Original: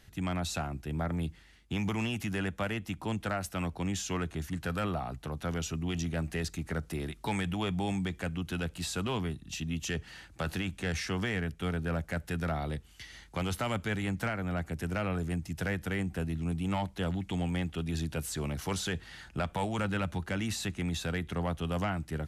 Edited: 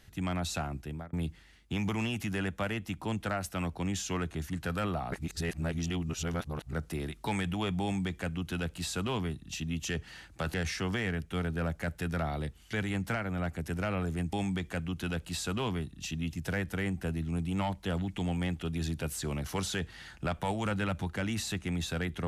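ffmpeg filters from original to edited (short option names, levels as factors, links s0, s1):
-filter_complex "[0:a]asplit=8[s0][s1][s2][s3][s4][s5][s6][s7];[s0]atrim=end=1.13,asetpts=PTS-STARTPTS,afade=t=out:st=0.8:d=0.33[s8];[s1]atrim=start=1.13:end=5.122,asetpts=PTS-STARTPTS,afade=t=in:d=0.004:c=hsin[s9];[s2]atrim=start=5.118:end=6.732,asetpts=PTS-STARTPTS,areverse[s10];[s3]atrim=start=6.728:end=10.542[s11];[s4]atrim=start=10.828:end=13.022[s12];[s5]atrim=start=13.858:end=15.462[s13];[s6]atrim=start=7.818:end=9.822[s14];[s7]atrim=start=15.458[s15];[s8][s9]concat=n=2:v=0:a=1[s16];[s16][s10]acrossfade=d=0.004:c1=hsin:c2=hsin[s17];[s17][s11]acrossfade=d=0.004:c1=hsin:c2=hsin[s18];[s18][s12]acrossfade=d=0.004:c1=hsin:c2=hsin[s19];[s19][s13]acrossfade=d=0.004:c1=hsin:c2=hsin[s20];[s20][s14]acrossfade=d=0.004:c1=hsin:c2=hsin[s21];[s21][s15]acrossfade=d=0.004:c1=hsin:c2=hsin"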